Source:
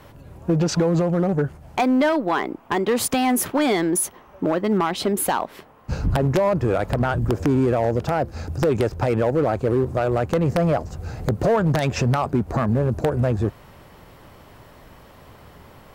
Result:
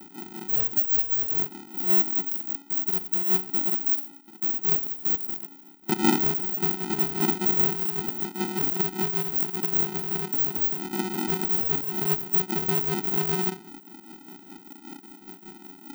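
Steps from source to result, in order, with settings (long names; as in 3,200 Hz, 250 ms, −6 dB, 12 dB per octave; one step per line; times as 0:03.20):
samples in bit-reversed order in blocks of 128 samples
in parallel at −1 dB: downward compressor, threshold −32 dBFS, peak gain reduction 15 dB
on the sum: amplitude tremolo 5.1 Hz, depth 67%
brickwall limiter −16 dBFS, peak gain reduction 6.5 dB
inverse Chebyshev band-stop filter 400–9,700 Hz, stop band 70 dB
dynamic equaliser 170 Hz, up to +6 dB, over −50 dBFS, Q 0.84
on a send at −14 dB: convolution reverb RT60 0.45 s, pre-delay 7 ms
on the sum: ring modulator with a square carrier 280 Hz
level +3 dB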